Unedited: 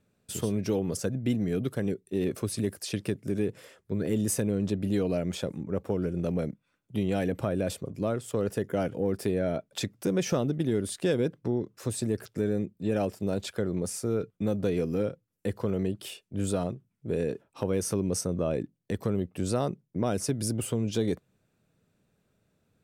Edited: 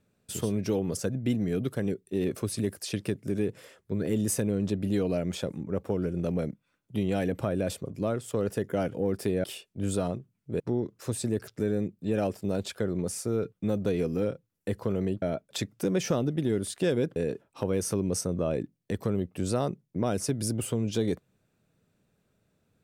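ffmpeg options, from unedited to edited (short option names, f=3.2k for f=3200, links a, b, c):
-filter_complex "[0:a]asplit=5[a][b][c][d][e];[a]atrim=end=9.442[f];[b]atrim=start=15.998:end=17.162[g];[c]atrim=start=11.378:end=16.002[h];[d]atrim=start=9.438:end=11.382[i];[e]atrim=start=17.158[j];[f][g]acrossfade=d=0.004:c1=hsin:c2=hsin[k];[k][h]acrossfade=d=0.004:c1=hsin:c2=hsin[l];[l][i]acrossfade=d=0.004:c1=hsin:c2=hsin[m];[m][j]acrossfade=d=0.004:c1=hsin:c2=hsin"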